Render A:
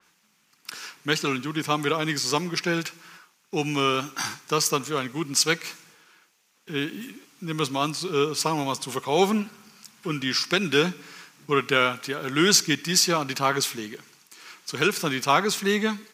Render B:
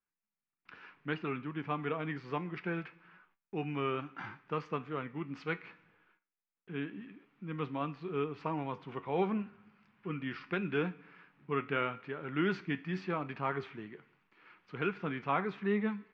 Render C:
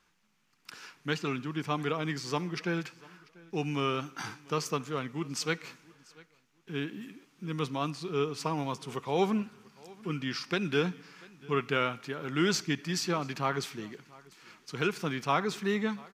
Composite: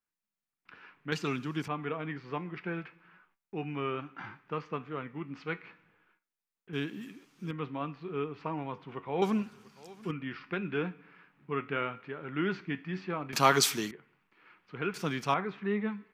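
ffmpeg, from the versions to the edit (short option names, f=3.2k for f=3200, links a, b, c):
-filter_complex "[2:a]asplit=4[a][b][c][d];[1:a]asplit=6[e][f][g][h][i][j];[e]atrim=end=1.122[k];[a]atrim=start=1.118:end=1.682[l];[f]atrim=start=1.678:end=6.732[m];[b]atrim=start=6.728:end=7.512[n];[g]atrim=start=7.508:end=9.222[o];[c]atrim=start=9.218:end=10.112[p];[h]atrim=start=10.108:end=13.332[q];[0:a]atrim=start=13.328:end=13.912[r];[i]atrim=start=13.908:end=14.942[s];[d]atrim=start=14.938:end=15.342[t];[j]atrim=start=15.338[u];[k][l]acrossfade=d=0.004:c1=hsin:c2=hsin[v];[v][m]acrossfade=d=0.004:c1=hsin:c2=hsin[w];[w][n]acrossfade=d=0.004:c1=hsin:c2=hsin[x];[x][o]acrossfade=d=0.004:c1=hsin:c2=hsin[y];[y][p]acrossfade=d=0.004:c1=hsin:c2=hsin[z];[z][q]acrossfade=d=0.004:c1=hsin:c2=hsin[aa];[aa][r]acrossfade=d=0.004:c1=hsin:c2=hsin[ab];[ab][s]acrossfade=d=0.004:c1=hsin:c2=hsin[ac];[ac][t]acrossfade=d=0.004:c1=hsin:c2=hsin[ad];[ad][u]acrossfade=d=0.004:c1=hsin:c2=hsin"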